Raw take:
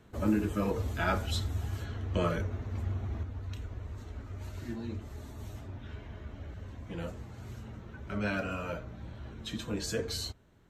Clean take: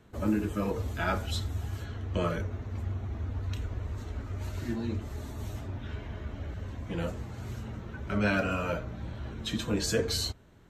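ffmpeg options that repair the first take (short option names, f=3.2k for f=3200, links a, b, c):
-af "asetnsamples=n=441:p=0,asendcmd='3.23 volume volume 5.5dB',volume=0dB"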